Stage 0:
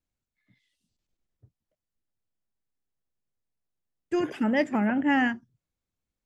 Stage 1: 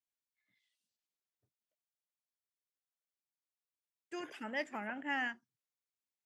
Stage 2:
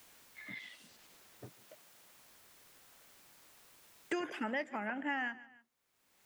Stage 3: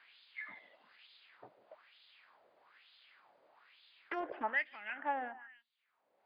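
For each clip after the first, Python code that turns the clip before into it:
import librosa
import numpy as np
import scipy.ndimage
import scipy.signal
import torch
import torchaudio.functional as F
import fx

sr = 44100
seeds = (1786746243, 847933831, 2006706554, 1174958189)

y1 = fx.highpass(x, sr, hz=1200.0, slope=6)
y1 = y1 * librosa.db_to_amplitude(-7.0)
y2 = fx.rider(y1, sr, range_db=10, speed_s=2.0)
y2 = fx.echo_feedback(y2, sr, ms=147, feedback_pct=26, wet_db=-22.0)
y2 = fx.band_squash(y2, sr, depth_pct=100)
y2 = y2 * librosa.db_to_amplitude(2.5)
y3 = fx.filter_lfo_bandpass(y2, sr, shape='sine', hz=1.1, low_hz=560.0, high_hz=3700.0, q=3.1)
y3 = fx.brickwall_lowpass(y3, sr, high_hz=5000.0)
y3 = fx.doppler_dist(y3, sr, depth_ms=0.2)
y3 = y3 * librosa.db_to_amplitude(8.5)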